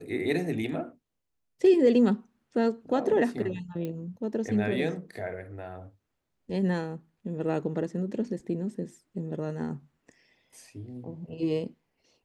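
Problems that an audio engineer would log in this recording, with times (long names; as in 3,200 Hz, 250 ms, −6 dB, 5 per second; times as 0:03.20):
0:03.85: click −23 dBFS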